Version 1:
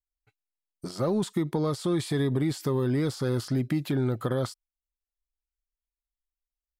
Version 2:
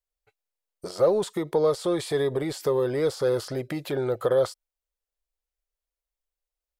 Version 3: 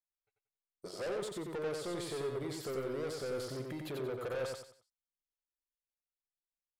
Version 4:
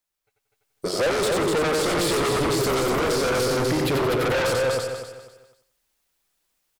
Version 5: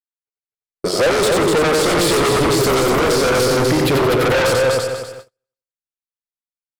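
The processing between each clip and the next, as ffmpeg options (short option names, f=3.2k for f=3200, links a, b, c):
-af "equalizer=f=125:t=o:w=1:g=-7,equalizer=f=250:t=o:w=1:g=-12,equalizer=f=500:t=o:w=1:g=12,volume=1.5dB"
-af "agate=range=-13dB:threshold=-45dB:ratio=16:detection=peak,asoftclip=type=tanh:threshold=-27dB,aecho=1:1:91|182|273|364:0.668|0.214|0.0684|0.0219,volume=-9dB"
-af "aecho=1:1:248|496|744|992:0.631|0.17|0.046|0.0124,aeval=exprs='0.0473*sin(PI/2*3.16*val(0)/0.0473)':c=same,dynaudnorm=f=180:g=7:m=9dB,volume=-1.5dB"
-af "agate=range=-38dB:threshold=-41dB:ratio=16:detection=peak,volume=7dB"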